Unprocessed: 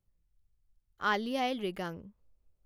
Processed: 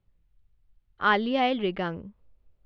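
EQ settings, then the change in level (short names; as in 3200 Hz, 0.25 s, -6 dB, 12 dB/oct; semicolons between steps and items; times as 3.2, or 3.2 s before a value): LPF 3700 Hz 24 dB/oct; +7.5 dB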